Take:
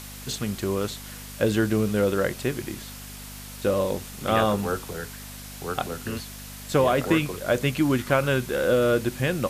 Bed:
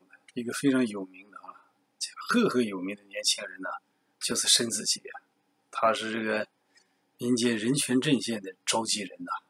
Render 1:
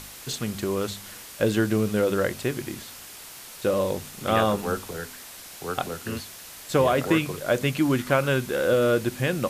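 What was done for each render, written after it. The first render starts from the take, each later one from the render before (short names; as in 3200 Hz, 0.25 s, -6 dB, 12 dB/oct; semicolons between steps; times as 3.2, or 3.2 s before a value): de-hum 50 Hz, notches 5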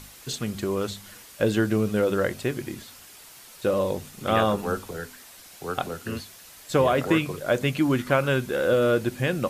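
denoiser 6 dB, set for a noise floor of -43 dBFS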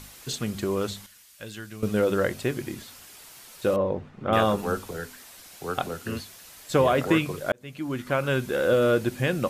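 1.06–1.83 passive tone stack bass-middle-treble 5-5-5; 3.76–4.33 LPF 1600 Hz; 7.52–8.49 fade in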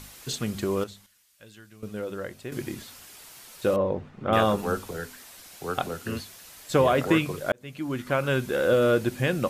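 0.84–2.52 gain -10.5 dB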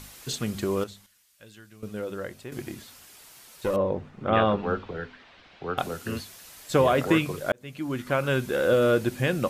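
2.44–3.74 tube stage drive 16 dB, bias 0.6; 4.3–5.78 LPF 3500 Hz 24 dB/oct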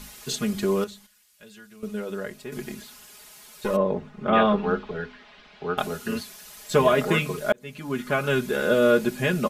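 comb 4.8 ms, depth 89%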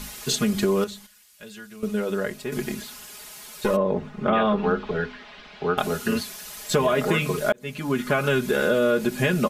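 in parallel at 0 dB: limiter -15 dBFS, peak gain reduction 8.5 dB; on the sum: compressor 3:1, threshold -19 dBFS, peak gain reduction 7 dB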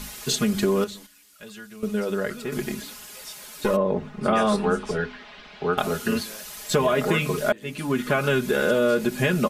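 add bed -16.5 dB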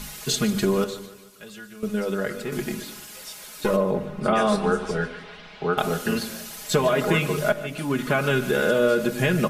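split-band echo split 470 Hz, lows 0.105 s, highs 0.148 s, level -15.5 dB; shoebox room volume 2300 m³, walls furnished, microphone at 0.64 m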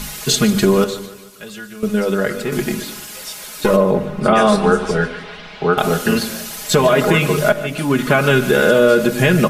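gain +8.5 dB; limiter -3 dBFS, peak gain reduction 3 dB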